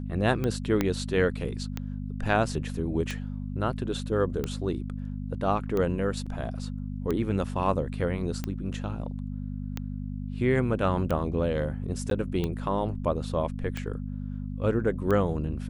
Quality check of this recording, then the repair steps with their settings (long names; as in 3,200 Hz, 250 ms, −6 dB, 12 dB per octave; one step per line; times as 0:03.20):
mains hum 50 Hz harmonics 5 −34 dBFS
scratch tick 45 rpm −17 dBFS
0:00.81: click −11 dBFS
0:06.26–0:06.27: drop-out 5.2 ms
0:12.10–0:12.11: drop-out 12 ms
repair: click removal
hum removal 50 Hz, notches 5
repair the gap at 0:06.26, 5.2 ms
repair the gap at 0:12.10, 12 ms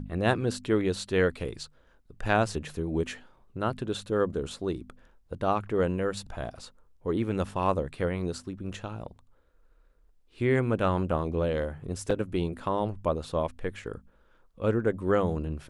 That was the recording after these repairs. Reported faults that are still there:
0:00.81: click